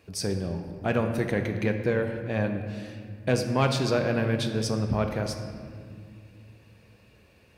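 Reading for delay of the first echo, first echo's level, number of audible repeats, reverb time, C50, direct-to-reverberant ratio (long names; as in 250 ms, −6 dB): no echo audible, no echo audible, no echo audible, 2.1 s, 7.0 dB, 5.0 dB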